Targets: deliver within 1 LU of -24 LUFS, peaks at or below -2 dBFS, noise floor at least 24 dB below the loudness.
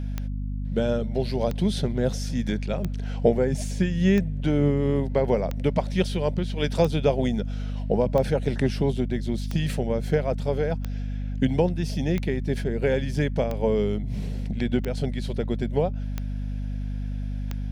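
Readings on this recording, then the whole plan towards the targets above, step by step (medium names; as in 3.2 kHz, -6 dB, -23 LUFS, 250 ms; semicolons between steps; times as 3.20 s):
clicks found 14; hum 50 Hz; highest harmonic 250 Hz; hum level -27 dBFS; loudness -26.0 LUFS; peak level -7.0 dBFS; loudness target -24.0 LUFS
-> de-click; de-hum 50 Hz, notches 5; trim +2 dB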